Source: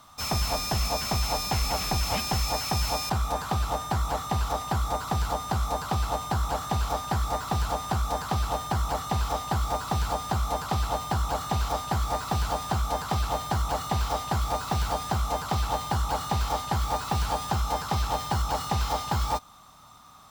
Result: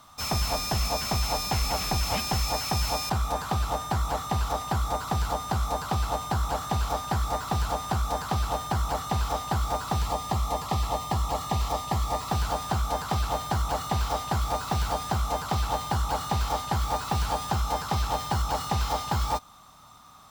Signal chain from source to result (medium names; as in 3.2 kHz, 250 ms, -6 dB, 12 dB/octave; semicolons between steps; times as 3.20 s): 10.02–12.29 s: Butterworth band-stop 1.5 kHz, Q 5